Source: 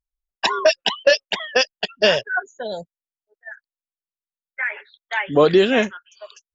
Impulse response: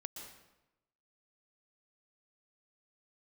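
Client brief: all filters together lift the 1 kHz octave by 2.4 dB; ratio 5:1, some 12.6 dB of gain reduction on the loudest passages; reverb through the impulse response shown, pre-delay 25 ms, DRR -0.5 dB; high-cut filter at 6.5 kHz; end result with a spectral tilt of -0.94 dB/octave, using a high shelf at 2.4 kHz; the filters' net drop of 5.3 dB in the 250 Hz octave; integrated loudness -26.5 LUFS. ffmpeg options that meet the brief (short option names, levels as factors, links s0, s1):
-filter_complex "[0:a]lowpass=6500,equalizer=f=250:t=o:g=-8.5,equalizer=f=1000:t=o:g=4.5,highshelf=f=2400:g=-5.5,acompressor=threshold=0.0631:ratio=5,asplit=2[s0][s1];[1:a]atrim=start_sample=2205,adelay=25[s2];[s1][s2]afir=irnorm=-1:irlink=0,volume=1.5[s3];[s0][s3]amix=inputs=2:normalize=0"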